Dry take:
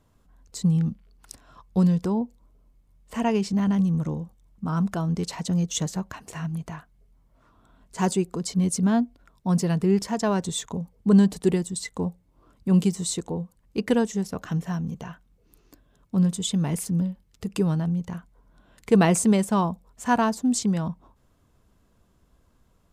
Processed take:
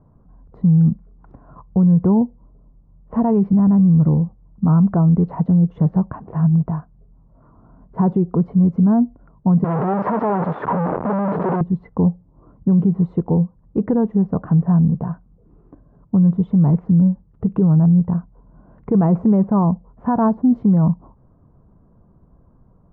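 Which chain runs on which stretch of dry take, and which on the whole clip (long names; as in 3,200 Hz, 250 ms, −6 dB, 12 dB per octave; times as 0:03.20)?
0:09.64–0:11.61: sign of each sample alone + meter weighting curve A
whole clip: low-pass filter 1,100 Hz 24 dB per octave; parametric band 150 Hz +7.5 dB 1 octave; brickwall limiter −17 dBFS; level +8.5 dB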